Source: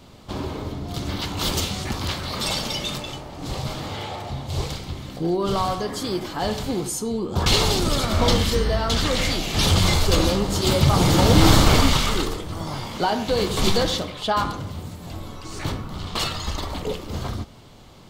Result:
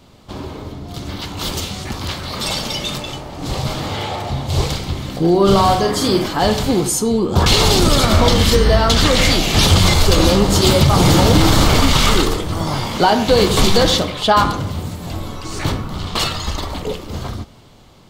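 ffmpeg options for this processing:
-filter_complex "[0:a]asettb=1/sr,asplit=3[a][b][c];[a]atrim=end=5.304[d];[b]atrim=start=5.3:end=6.28,asetpts=PTS-STARTPTS,afade=t=in:d=0.004:c=qsin,afade=t=out:st=0.976:d=0.004:c=qsin,asplit=2[e][f];[f]adelay=46,volume=-5dB[g];[e][g]amix=inputs=2:normalize=0,atrim=end_sample=43218[h];[c]atrim=start=6.276[i];[d][h]acrossfade=d=0.004:c1=hsin:c2=qsin[j];[j][i]acrossfade=d=0.004:c1=qsin:c2=hsin,alimiter=limit=-11.5dB:level=0:latency=1:release=110,dynaudnorm=f=930:g=7:m=12dB"

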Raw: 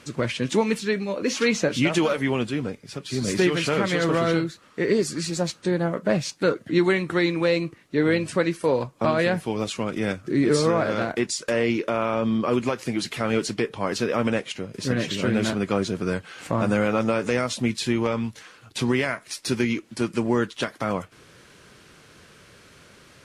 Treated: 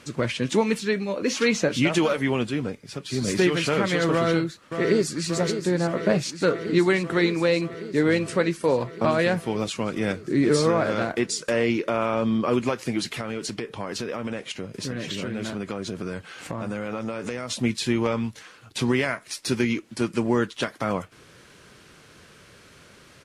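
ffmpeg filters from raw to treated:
-filter_complex "[0:a]asplit=2[a][b];[b]afade=t=in:st=4.13:d=0.01,afade=t=out:st=5.29:d=0.01,aecho=0:1:580|1160|1740|2320|2900|3480|4060|4640|5220|5800|6380|6960:0.375837|0.30067|0.240536|0.192429|0.153943|0.123154|0.0985235|0.0788188|0.0630551|0.050444|0.0403552|0.0322842[c];[a][c]amix=inputs=2:normalize=0,asettb=1/sr,asplit=3[d][e][f];[d]atrim=end=13.044[g];[e]atrim=start=13.04:end=17.5,asetpts=PTS-STARTPTS,afade=t=in:d=0.004:c=qsin,afade=t=out:st=4.456:d=0.004:c=qsin,acompressor=threshold=-26dB:ratio=6:attack=3.2:release=140:knee=1:detection=peak[h];[f]atrim=start=17.496[i];[g][h]acrossfade=d=0.004:c1=hsin:c2=qsin[j];[j][i]acrossfade=d=0.004:c1=qsin:c2=hsin"

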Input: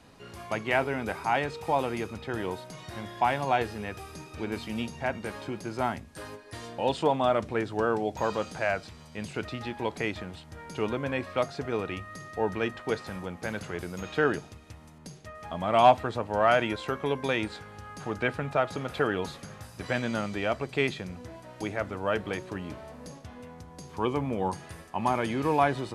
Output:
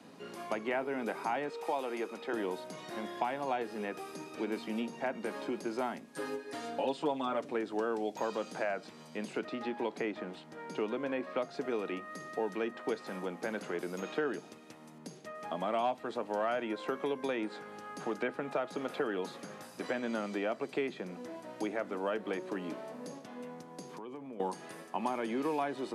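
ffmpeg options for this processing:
-filter_complex "[0:a]asettb=1/sr,asplit=3[a][b][c];[a]atrim=end=1.494[d];[b]atrim=start=1.49:end=2.33,asetpts=PTS-STARTPTS,afade=t=in:d=0.004:c=qsin,afade=t=out:st=0.836:d=0.004:c=qsin,highpass=390[e];[c]atrim=start=2.326[f];[d][e]acrossfade=d=0.004:c1=hsin:c2=qsin[g];[g][f]acrossfade=d=0.004:c1=qsin:c2=hsin,asettb=1/sr,asplit=3[h][i][j];[h]atrim=end=6.134[k];[i]atrim=start=6.13:end=7.51,asetpts=PTS-STARTPTS,afade=t=in:d=0.004:c=qsin,afade=t=out:st=1.376:d=0.004:c=qsin,aecho=1:1:7.2:0.91,atrim=end_sample=60858[l];[j]atrim=start=7.506[m];[k][l]acrossfade=d=0.004:c1=hsin:c2=qsin[n];[n][m]acrossfade=d=0.004:c1=qsin:c2=hsin,asettb=1/sr,asplit=3[o][p][q];[o]atrim=end=9.394[r];[p]atrim=start=9.39:end=11.54,asetpts=PTS-STARTPTS,afade=t=in:d=0.004:c=qsin,afade=t=out:st=2.146:d=0.004:c=qsin,highshelf=f=7k:g=-9.5[s];[q]atrim=start=11.536[t];[r][s]acrossfade=d=0.004:c1=hsin:c2=qsin[u];[u][t]acrossfade=d=0.004:c1=qsin:c2=hsin,asettb=1/sr,asplit=3[v][w][x];[v]atrim=end=23.874[y];[w]atrim=start=23.87:end=24.4,asetpts=PTS-STARTPTS,afade=t=in:d=0.004:c=qsin,afade=t=out:st=0.526:d=0.004:c=qsin,acompressor=threshold=-41dB:ratio=12:attack=3.2:release=140:knee=1:detection=peak[z];[x]atrim=start=24.396[aa];[y][z]acrossfade=d=0.004:c1=hsin:c2=qsin[ab];[ab][aa]acrossfade=d=0.004:c1=qsin:c2=hsin,lowshelf=f=400:g=10.5,acrossover=split=250|2200[ac][ad][ae];[ac]acompressor=threshold=-50dB:ratio=4[af];[ad]acompressor=threshold=-30dB:ratio=4[ag];[ae]acompressor=threshold=-48dB:ratio=4[ah];[af][ag][ah]amix=inputs=3:normalize=0,highpass=f=180:w=0.5412,highpass=f=180:w=1.3066,volume=-2dB"

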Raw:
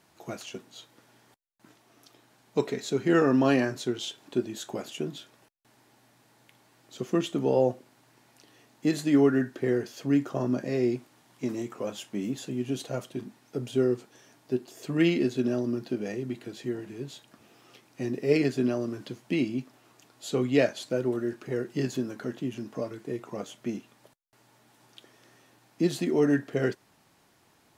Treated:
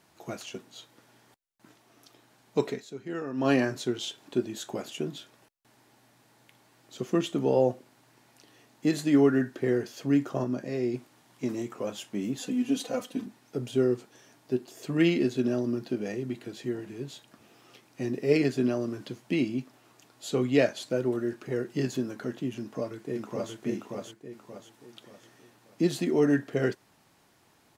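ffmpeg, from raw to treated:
-filter_complex "[0:a]asettb=1/sr,asplit=3[a][b][c];[a]atrim=end=12.394[d];[b]atrim=start=12.39:end=13.26,asetpts=PTS-STARTPTS,afade=t=in:d=0.004:c=qsin,afade=t=out:st=0.866:d=0.004:c=qsin,aecho=1:1:4:0.94,atrim=end_sample=38367[e];[c]atrim=start=13.256[f];[d][e]acrossfade=d=0.004:c1=hsin:c2=qsin[g];[g][f]acrossfade=d=0.004:c1=qsin:c2=hsin,asplit=2[h][i];[i]afade=t=in:st=22.57:d=0.01,afade=t=out:st=23.53:d=0.01,aecho=0:1:580|1160|1740|2320|2900:0.794328|0.317731|0.127093|0.050837|0.0203348[j];[h][j]amix=inputs=2:normalize=0,asplit=5[k][l][m][n][o];[k]atrim=end=2.85,asetpts=PTS-STARTPTS,afade=t=out:st=2.69:d=0.16:silence=0.223872[p];[l]atrim=start=2.85:end=3.35,asetpts=PTS-STARTPTS,volume=-13dB[q];[m]atrim=start=3.35:end=10.442,asetpts=PTS-STARTPTS,afade=t=in:d=0.16:silence=0.223872[r];[n]atrim=start=10.438:end=10.942,asetpts=PTS-STARTPTS,volume=-3.5dB[s];[o]atrim=start=10.938[t];[p][q][r]concat=n=3:v=0:a=1[u];[u][s]acrossfade=d=0.004:c1=hsin:c2=hsin[v];[v][t]acrossfade=d=0.004:c1=hsin:c2=hsin"

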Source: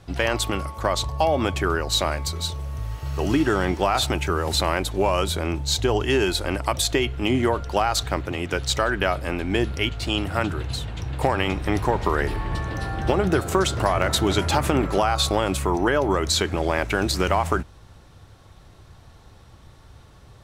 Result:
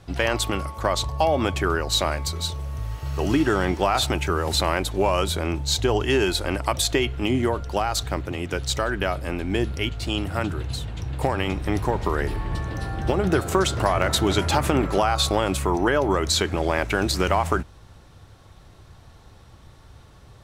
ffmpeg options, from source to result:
-filter_complex "[0:a]asettb=1/sr,asplit=3[a][b][c];[a]atrim=end=7.264[d];[b]atrim=start=7.26:end=13.24,asetpts=PTS-STARTPTS,afade=t=in:d=0.004:c=qsin,afade=t=out:st=5.976:d=0.004:c=qsin,equalizer=f=1.6k:w=0.3:g=-3.5[e];[c]atrim=start=13.236[f];[d][e]acrossfade=d=0.004:c1=hsin:c2=qsin[g];[g][f]acrossfade=d=0.004:c1=qsin:c2=hsin"

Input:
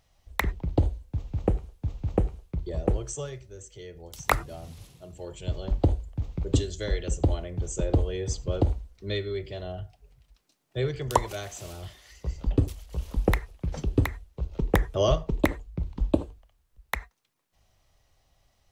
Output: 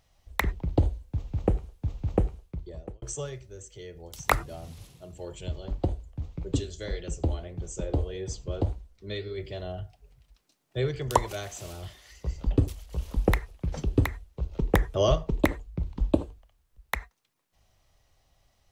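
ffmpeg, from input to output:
-filter_complex "[0:a]asplit=3[a][b][c];[a]afade=t=out:st=5.47:d=0.02[d];[b]flanger=delay=5.3:depth=8.9:regen=63:speed=1.7:shape=sinusoidal,afade=t=in:st=5.47:d=0.02,afade=t=out:st=9.37:d=0.02[e];[c]afade=t=in:st=9.37:d=0.02[f];[d][e][f]amix=inputs=3:normalize=0,asplit=2[g][h];[g]atrim=end=3.02,asetpts=PTS-STARTPTS,afade=t=out:st=2.21:d=0.81[i];[h]atrim=start=3.02,asetpts=PTS-STARTPTS,afade=t=in:d=0.004:c=hsin[j];[i][j]concat=n=2:v=0:a=1"

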